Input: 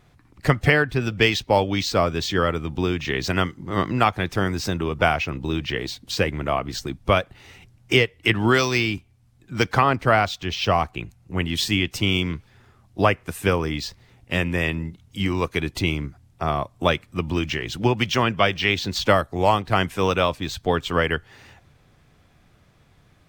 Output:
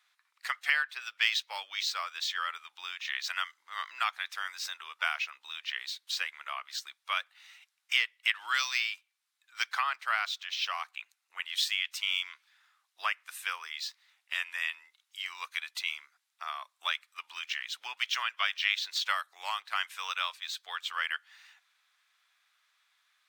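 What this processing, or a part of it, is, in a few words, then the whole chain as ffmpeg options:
headphones lying on a table: -af "highpass=f=1200:w=0.5412,highpass=f=1200:w=1.3066,equalizer=f=3800:t=o:w=0.32:g=4.5,volume=0.447"

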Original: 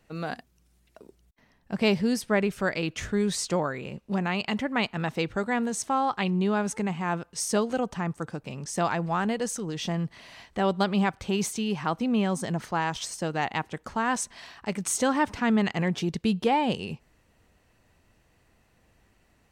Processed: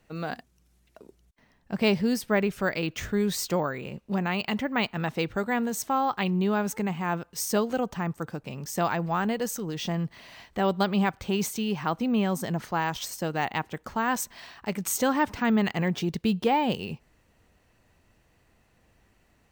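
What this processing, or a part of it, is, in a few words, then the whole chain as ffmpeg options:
crushed at another speed: -af "asetrate=22050,aresample=44100,acrusher=samples=4:mix=1:aa=0.000001,asetrate=88200,aresample=44100"

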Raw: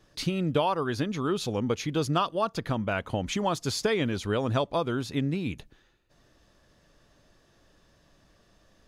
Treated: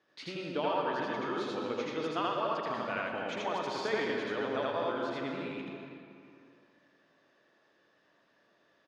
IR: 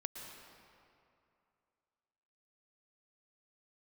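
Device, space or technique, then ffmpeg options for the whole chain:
station announcement: -filter_complex "[0:a]highpass=310,lowpass=3800,equalizer=f=1800:t=o:w=0.52:g=4.5,aecho=1:1:81.63|119.5:1|0.282[s0];[1:a]atrim=start_sample=2205[s1];[s0][s1]afir=irnorm=-1:irlink=0,asettb=1/sr,asplit=3[s2][s3][s4];[s2]atrim=end=2.704[s5];[s3]atrim=start=2.7:end=3.1,asetpts=PTS-STARTPTS,afade=t=in:d=0.004:c=qsin,afade=t=out:st=0.396:d=0.004:c=qsin,highshelf=f=6400:g=10[s6];[s4]atrim=start=3.096[s7];[s5][s6]acrossfade=d=0.004:c1=hsin:c2=qsin[s8];[s8][s7]acrossfade=d=0.004:c1=qsin:c2=hsin,volume=0.531"

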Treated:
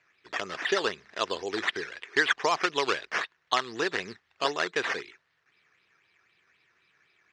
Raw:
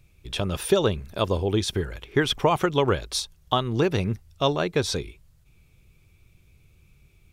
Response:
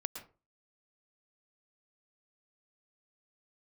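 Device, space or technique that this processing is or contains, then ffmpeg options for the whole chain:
circuit-bent sampling toy: -af "acrusher=samples=9:mix=1:aa=0.000001:lfo=1:lforange=5.4:lforate=3.9,highpass=550,equalizer=f=570:t=q:w=4:g=-7,equalizer=f=840:t=q:w=4:g=-5,equalizer=f=1800:t=q:w=4:g=8,lowpass=f=5700:w=0.5412,lowpass=f=5700:w=1.3066"

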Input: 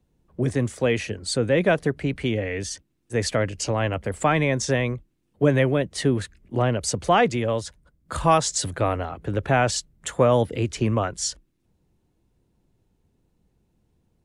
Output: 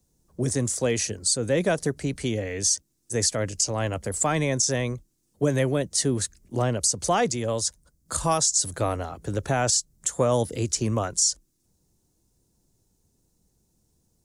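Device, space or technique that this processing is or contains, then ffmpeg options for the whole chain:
over-bright horn tweeter: -af "highshelf=f=4100:t=q:w=1.5:g=14,alimiter=limit=0.335:level=0:latency=1:release=159,volume=0.75"

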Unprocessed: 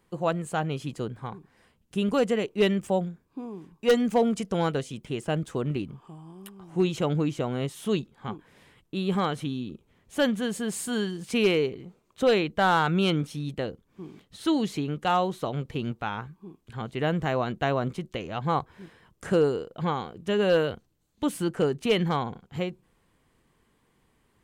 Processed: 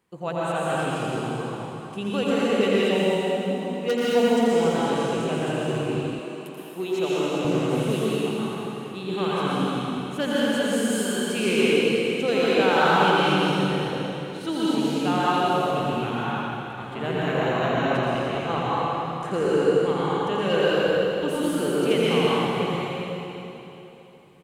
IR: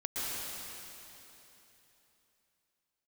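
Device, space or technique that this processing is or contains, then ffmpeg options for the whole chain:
PA in a hall: -filter_complex "[0:a]highpass=f=120:p=1,equalizer=f=2600:t=o:w=0.26:g=3,aecho=1:1:84:0.501[s0];[1:a]atrim=start_sample=2205[s1];[s0][s1]afir=irnorm=-1:irlink=0,asettb=1/sr,asplit=3[s2][s3][s4];[s2]atrim=end=6.194[s5];[s3]atrim=start=6.19:end=7.45,asetpts=PTS-STARTPTS,afade=t=in:d=0.004:c=qsin,afade=t=out:st=1.256:d=0.004:c=qsin,highpass=270[s6];[s4]atrim=start=7.446[s7];[s5][s6]acrossfade=d=0.004:c1=hsin:c2=qsin[s8];[s8][s7]acrossfade=d=0.004:c1=qsin:c2=hsin,volume=0.841"

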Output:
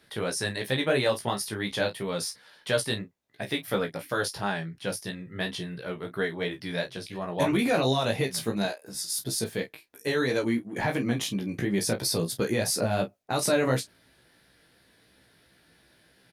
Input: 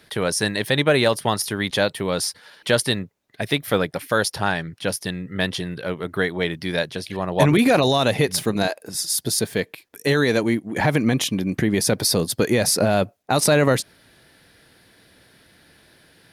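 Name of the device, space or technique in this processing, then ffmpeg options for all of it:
double-tracked vocal: -filter_complex "[0:a]asplit=2[s0][s1];[s1]adelay=30,volume=0.299[s2];[s0][s2]amix=inputs=2:normalize=0,flanger=delay=15:depth=3.1:speed=2.9,volume=0.562"

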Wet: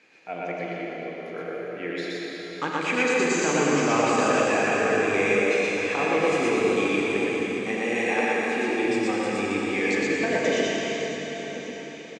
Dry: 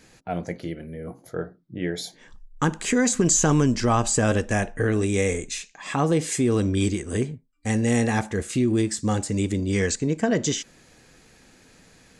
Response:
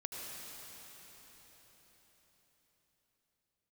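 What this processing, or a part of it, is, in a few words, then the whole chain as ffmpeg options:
station announcement: -filter_complex "[0:a]highpass=350,lowpass=3800,equalizer=f=2400:t=o:w=0.3:g=11.5,aecho=1:1:40.82|119.5:0.316|0.891[s0];[1:a]atrim=start_sample=2205[s1];[s0][s1]afir=irnorm=-1:irlink=0,asettb=1/sr,asplit=3[s2][s3][s4];[s2]atrim=end=7.774[s5];[s3]atrim=start=7.77:end=8.86,asetpts=PTS-STARTPTS,afade=t=in:d=0.004:c=qsin,afade=t=out:st=1.086:d=0.004:c=qsin,highpass=190[s6];[s4]atrim=start=8.856[s7];[s5][s6]acrossfade=d=0.004:c1=hsin:c2=qsin[s8];[s8][s7]acrossfade=d=0.004:c1=qsin:c2=hsin,aecho=1:1:1091:0.15"

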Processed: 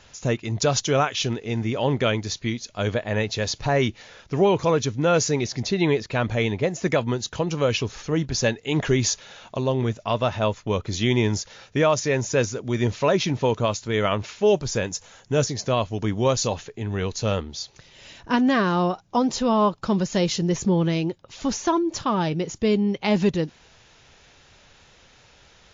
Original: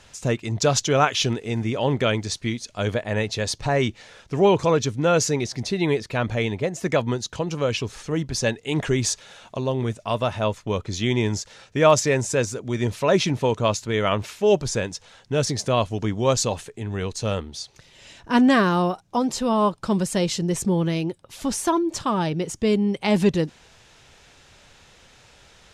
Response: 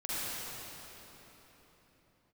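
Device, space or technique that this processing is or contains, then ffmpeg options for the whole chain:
low-bitrate web radio: -filter_complex "[0:a]asettb=1/sr,asplit=3[s0][s1][s2];[s0]atrim=end=14.874[s3];[s1]atrim=start=14.87:end=15.47,asetpts=PTS-STARTPTS,afade=t=in:d=0.004:c=qsin,afade=t=out:st=0.596:d=0.004:c=qsin,highshelf=f=6600:t=q:w=1.5:g=14[s4];[s2]atrim=start=15.466[s5];[s3][s4]acrossfade=d=0.004:c1=hsin:c2=qsin[s6];[s6][s5]acrossfade=d=0.004:c1=qsin:c2=hsin,dynaudnorm=f=500:g=17:m=1.41,alimiter=limit=0.335:level=0:latency=1:release=453" -ar 16000 -c:a libmp3lame -b:a 48k

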